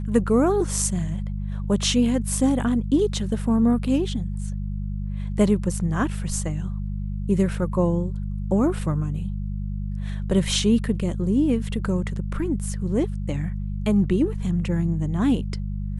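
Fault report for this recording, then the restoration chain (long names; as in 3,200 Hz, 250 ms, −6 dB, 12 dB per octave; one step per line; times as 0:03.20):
mains hum 50 Hz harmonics 4 −28 dBFS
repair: hum removal 50 Hz, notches 4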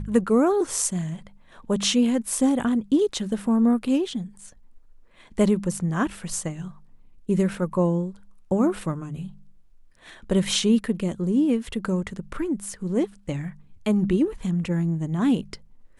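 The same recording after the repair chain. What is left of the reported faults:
none of them is left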